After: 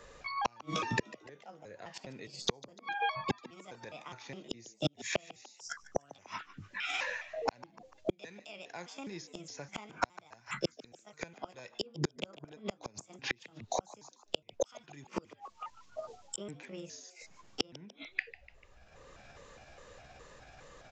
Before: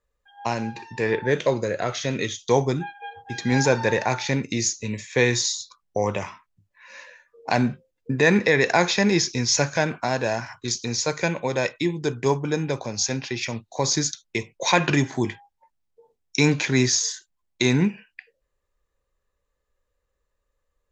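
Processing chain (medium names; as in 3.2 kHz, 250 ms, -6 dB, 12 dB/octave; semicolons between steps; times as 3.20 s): pitch shift switched off and on +5.5 st, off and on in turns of 206 ms; inverted gate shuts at -19 dBFS, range -42 dB; frequency-shifting echo 147 ms, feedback 34%, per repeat +98 Hz, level -19 dB; resampled via 16 kHz; three bands compressed up and down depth 70%; trim +6.5 dB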